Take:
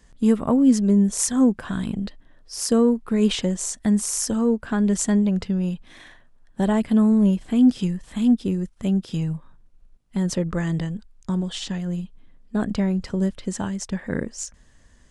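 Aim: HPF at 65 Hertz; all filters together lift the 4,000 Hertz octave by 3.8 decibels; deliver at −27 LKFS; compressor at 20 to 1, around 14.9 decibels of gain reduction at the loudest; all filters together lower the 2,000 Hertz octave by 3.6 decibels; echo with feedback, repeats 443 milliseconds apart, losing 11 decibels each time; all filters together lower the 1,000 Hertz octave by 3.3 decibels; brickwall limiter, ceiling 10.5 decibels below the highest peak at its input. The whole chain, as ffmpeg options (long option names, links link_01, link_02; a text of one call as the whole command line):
ffmpeg -i in.wav -af "highpass=65,equalizer=frequency=1000:width_type=o:gain=-3.5,equalizer=frequency=2000:width_type=o:gain=-5,equalizer=frequency=4000:width_type=o:gain=7,acompressor=threshold=-27dB:ratio=20,alimiter=limit=-23.5dB:level=0:latency=1,aecho=1:1:443|886|1329:0.282|0.0789|0.0221,volume=6dB" out.wav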